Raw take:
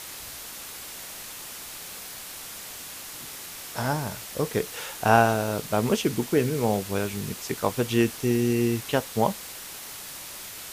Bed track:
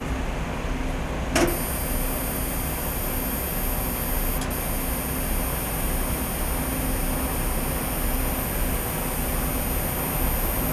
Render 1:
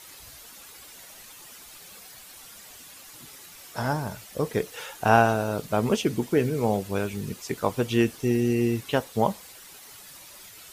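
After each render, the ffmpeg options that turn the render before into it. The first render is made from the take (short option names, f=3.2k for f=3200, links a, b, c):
-af "afftdn=nr=10:nf=-40"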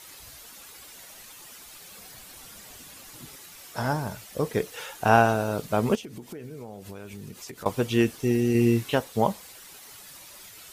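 -filter_complex "[0:a]asettb=1/sr,asplit=3[a][b][c];[a]atrim=end=1.984[d];[b]atrim=start=1.98:end=3.36,asetpts=PTS-STARTPTS,afade=t=in:d=0.004:c=qsin,afade=t=out:st=1.376:d=0.004:c=qsin,lowshelf=f=470:g=6.5[e];[c]atrim=start=3.356[f];[d][e]acrossfade=d=0.004:c1=hsin:c2=qsin[g];[g][f]acrossfade=d=0.004:c1=qsin:c2=hsin,asettb=1/sr,asplit=3[h][i][j];[h]atrim=end=5.954[k];[i]atrim=start=5.95:end=7.66,asetpts=PTS-STARTPTS,afade=t=in:d=0.004:c=qsin,afade=t=out:st=1.706:d=0.004:c=qsin,acompressor=threshold=-36dB:ratio=12:attack=3.2:release=140:knee=1:detection=peak[l];[j]atrim=start=7.656[m];[k][l]acrossfade=d=0.004:c1=hsin:c2=qsin[n];[n][m]acrossfade=d=0.004:c1=qsin:c2=hsin,asettb=1/sr,asplit=3[o][p][q];[o]atrim=end=8.524[r];[p]atrim=start=8.52:end=8.95,asetpts=PTS-STARTPTS,afade=t=in:d=0.004:c=qsin,afade=t=out:st=0.426:d=0.004:c=qsin,asplit=2[s][t];[t]adelay=26,volume=-3dB[u];[s][u]amix=inputs=2:normalize=0,atrim=end_sample=18963[v];[q]atrim=start=8.946[w];[r][v]acrossfade=d=0.004:c1=hsin:c2=qsin[x];[x][w]acrossfade=d=0.004:c1=qsin:c2=hsin"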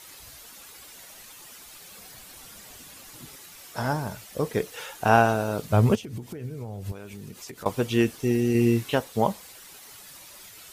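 -filter_complex "[0:a]asettb=1/sr,asplit=3[a][b][c];[a]atrim=end=5.674[d];[b]atrim=start=5.67:end=6.92,asetpts=PTS-STARTPTS,afade=t=in:d=0.004:c=qsin,afade=t=out:st=1.246:d=0.004:c=qsin,equalizer=f=100:t=o:w=0.94:g=14.5[e];[c]atrim=start=6.916[f];[d][e]acrossfade=d=0.004:c1=hsin:c2=qsin[g];[g][f]acrossfade=d=0.004:c1=qsin:c2=hsin"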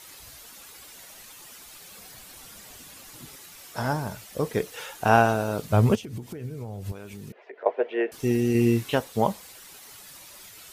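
-filter_complex "[0:a]asettb=1/sr,asplit=3[a][b][c];[a]atrim=end=7.324[d];[b]atrim=start=7.32:end=8.12,asetpts=PTS-STARTPTS,afade=t=in:d=0.004:c=qsin,afade=t=out:st=0.796:d=0.004:c=qsin,highpass=f=420:w=0.5412,highpass=f=420:w=1.3066,equalizer=f=420:t=q:w=4:g=7,equalizer=f=640:t=q:w=4:g=10,equalizer=f=1.2k:t=q:w=4:g=-9,equalizer=f=1.8k:t=q:w=4:g=3,lowpass=f=2.2k:w=0.5412,lowpass=f=2.2k:w=1.3066[e];[c]atrim=start=8.116[f];[d][e]acrossfade=d=0.004:c1=hsin:c2=qsin[g];[g][f]acrossfade=d=0.004:c1=qsin:c2=hsin"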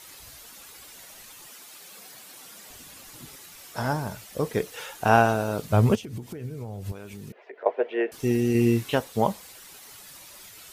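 -filter_complex "[0:a]asettb=1/sr,asplit=3[a][b][c];[a]atrim=end=1.494[d];[b]atrim=start=1.49:end=2.7,asetpts=PTS-STARTPTS,afade=t=in:d=0.004:c=qsin,afade=t=out:st=1.206:d=0.004:c=qsin,highpass=200[e];[c]atrim=start=2.696[f];[d][e]acrossfade=d=0.004:c1=hsin:c2=qsin[g];[g][f]acrossfade=d=0.004:c1=qsin:c2=hsin"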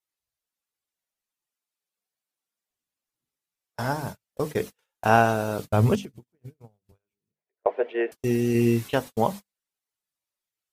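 -af "bandreject=f=50:t=h:w=6,bandreject=f=100:t=h:w=6,bandreject=f=150:t=h:w=6,bandreject=f=200:t=h:w=6,bandreject=f=250:t=h:w=6,bandreject=f=300:t=h:w=6,agate=range=-44dB:threshold=-32dB:ratio=16:detection=peak"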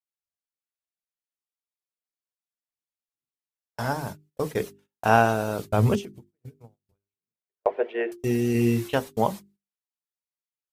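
-af "bandreject=f=50:t=h:w=6,bandreject=f=100:t=h:w=6,bandreject=f=150:t=h:w=6,bandreject=f=200:t=h:w=6,bandreject=f=250:t=h:w=6,bandreject=f=300:t=h:w=6,bandreject=f=350:t=h:w=6,bandreject=f=400:t=h:w=6,agate=range=-12dB:threshold=-54dB:ratio=16:detection=peak"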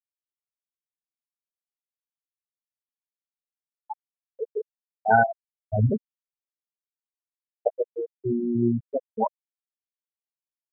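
-af "afftfilt=real='re*gte(hypot(re,im),0.447)':imag='im*gte(hypot(re,im),0.447)':win_size=1024:overlap=0.75,equalizer=f=2.4k:t=o:w=1.6:g=12.5"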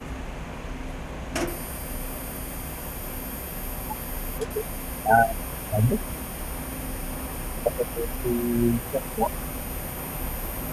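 -filter_complex "[1:a]volume=-7dB[a];[0:a][a]amix=inputs=2:normalize=0"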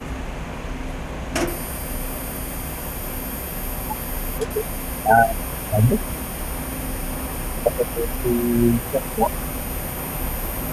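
-af "volume=5dB,alimiter=limit=-3dB:level=0:latency=1"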